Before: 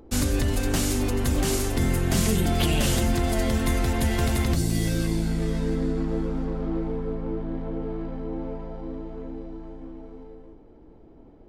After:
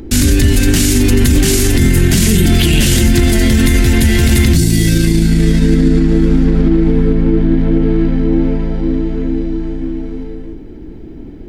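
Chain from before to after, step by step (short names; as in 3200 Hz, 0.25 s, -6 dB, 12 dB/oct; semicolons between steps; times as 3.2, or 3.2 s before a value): band shelf 780 Hz -12 dB; maximiser +21.5 dB; gain -1 dB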